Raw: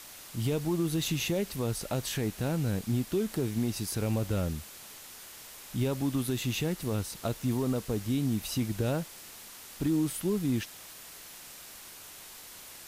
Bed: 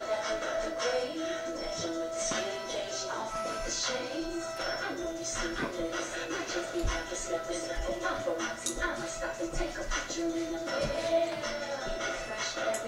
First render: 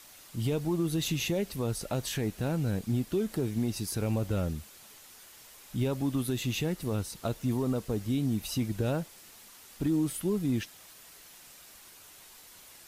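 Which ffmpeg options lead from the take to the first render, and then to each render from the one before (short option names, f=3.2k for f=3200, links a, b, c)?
-af "afftdn=nr=6:nf=-48"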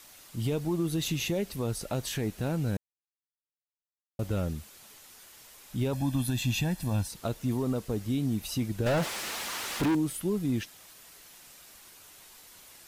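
-filter_complex "[0:a]asettb=1/sr,asplit=3[a][b][c];[a]atrim=end=5.934[d];[b]atrim=start=5.93:end=7.08,asetpts=PTS-STARTPTS,afade=t=in:d=0.004:c=qsin,afade=t=out:st=1.146:d=0.004:c=qsin,aecho=1:1:1.2:0.82,atrim=end_sample=50715[e];[c]atrim=start=7.076[f];[d][e]acrossfade=d=0.004:c1=hsin:c2=qsin[g];[g][f]acrossfade=d=0.004:c1=qsin:c2=hsin,asettb=1/sr,asplit=3[h][i][j];[h]atrim=end=8.864[k];[i]atrim=start=8.86:end=9.95,asetpts=PTS-STARTPTS,afade=t=in:d=0.004:c=qsin,afade=t=out:st=1.086:d=0.004:c=qsin,asplit=2[l][m];[m]highpass=f=720:p=1,volume=35dB,asoftclip=type=tanh:threshold=-19.5dB[n];[l][n]amix=inputs=2:normalize=0,lowpass=f=2.5k:p=1,volume=-6dB[o];[j]atrim=start=9.946[p];[k][o]acrossfade=d=0.004:c1=hsin:c2=qsin[q];[q][p]acrossfade=d=0.004:c1=qsin:c2=hsin,asplit=3[r][s][t];[r]atrim=end=2.77,asetpts=PTS-STARTPTS,afade=t=out:st=2.766:d=0.004:c=hsin[u];[s]atrim=start=2.77:end=4.19,asetpts=PTS-STARTPTS,volume=0[v];[t]atrim=start=4.19,asetpts=PTS-STARTPTS,afade=t=in:d=0.004:c=hsin[w];[u][v][w]concat=n=3:v=0:a=1"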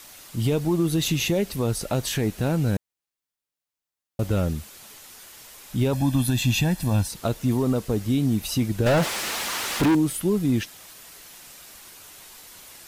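-af "volume=7dB"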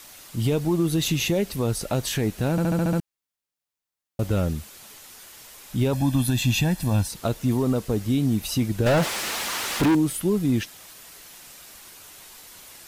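-filter_complex "[0:a]asplit=8[a][b][c][d][e][f][g][h];[a]atrim=end=2.582[i];[b]atrim=start=2.508:end=2.582[j];[c]atrim=start=2.508:end=2.582[k];[d]atrim=start=2.508:end=2.582[l];[e]atrim=start=2.508:end=2.582[m];[f]atrim=start=2.508:end=2.582[n];[g]atrim=start=2.508:end=2.582[o];[h]atrim=start=2.998[p];[i][j]acrossfade=d=0.004:c1=hsin:c2=hsin[q];[q][k]acrossfade=d=0.004:c1=hsin:c2=hsin[r];[r][l]acrossfade=d=0.004:c1=hsin:c2=hsin[s];[s][m]acrossfade=d=0.004:c1=hsin:c2=hsin[t];[t][n]acrossfade=d=0.004:c1=hsin:c2=hsin[u];[u][o]acrossfade=d=0.004:c1=hsin:c2=hsin[v];[v][p]acrossfade=d=0.004:c1=hsin:c2=hsin"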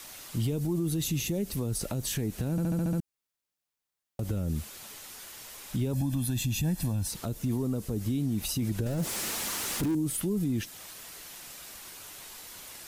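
-filter_complex "[0:a]acrossover=split=380|6100[a][b][c];[b]acompressor=threshold=-37dB:ratio=6[d];[a][d][c]amix=inputs=3:normalize=0,alimiter=limit=-22dB:level=0:latency=1:release=54"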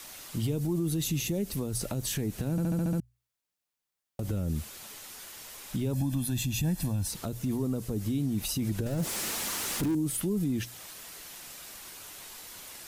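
-af "bandreject=f=60:t=h:w=6,bandreject=f=120:t=h:w=6"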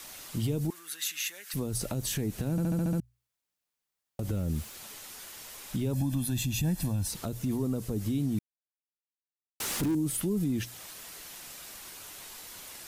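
-filter_complex "[0:a]asettb=1/sr,asplit=3[a][b][c];[a]atrim=end=0.704[d];[b]atrim=start=0.7:end=1.54,asetpts=PTS-STARTPTS,afade=t=in:d=0.004:c=qsin,afade=t=out:st=0.836:d=0.004:c=qsin,highpass=f=1.6k:t=q:w=3.6[e];[c]atrim=start=1.536[f];[d][e]acrossfade=d=0.004:c1=hsin:c2=qsin[g];[g][f]acrossfade=d=0.004:c1=qsin:c2=hsin,asettb=1/sr,asplit=3[h][i][j];[h]atrim=end=4.344[k];[i]atrim=start=4.34:end=4.75,asetpts=PTS-STARTPTS,afade=t=in:d=0.004:c=qsin,afade=t=out:st=0.406:d=0.004:c=qsin,aeval=exprs='val(0)*gte(abs(val(0)),0.00398)':c=same[l];[j]atrim=start=4.746[m];[k][l]acrossfade=d=0.004:c1=hsin:c2=qsin[n];[n][m]acrossfade=d=0.004:c1=qsin:c2=hsin,asplit=3[o][p][q];[o]atrim=end=8.39,asetpts=PTS-STARTPTS,afade=t=out:st=8.386:d=0.004:c=hsin[r];[p]atrim=start=8.39:end=9.6,asetpts=PTS-STARTPTS,volume=0[s];[q]atrim=start=9.6,asetpts=PTS-STARTPTS,afade=t=in:d=0.004:c=hsin[t];[r][s][t]concat=n=3:v=0:a=1"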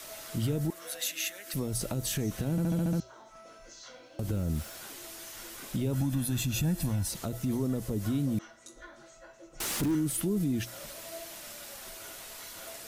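-filter_complex "[1:a]volume=-17dB[a];[0:a][a]amix=inputs=2:normalize=0"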